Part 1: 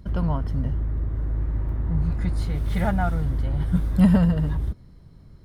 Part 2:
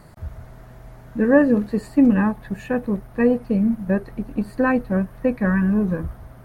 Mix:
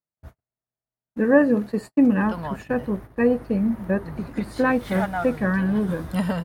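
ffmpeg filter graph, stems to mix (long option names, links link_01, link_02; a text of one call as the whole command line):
ffmpeg -i stem1.wav -i stem2.wav -filter_complex "[0:a]lowshelf=frequency=260:gain=-11.5,adelay=2150,volume=2dB[link_01];[1:a]volume=-0.5dB[link_02];[link_01][link_02]amix=inputs=2:normalize=0,agate=range=-49dB:threshold=-30dB:ratio=16:detection=peak,highpass=frequency=190:poles=1" out.wav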